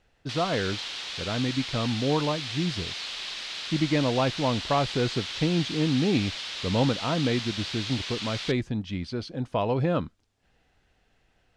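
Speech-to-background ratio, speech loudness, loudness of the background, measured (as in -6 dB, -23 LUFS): 5.0 dB, -28.0 LUFS, -33.0 LUFS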